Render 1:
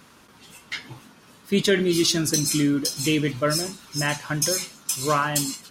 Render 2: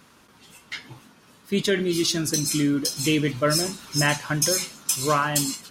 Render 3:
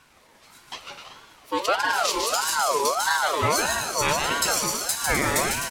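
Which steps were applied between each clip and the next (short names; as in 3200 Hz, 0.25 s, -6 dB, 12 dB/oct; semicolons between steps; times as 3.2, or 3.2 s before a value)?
vocal rider 0.5 s
regenerating reverse delay 0.1 s, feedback 71%, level -12 dB; bouncing-ball echo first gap 0.15 s, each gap 0.7×, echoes 5; ring modulator with a swept carrier 990 Hz, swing 30%, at 1.6 Hz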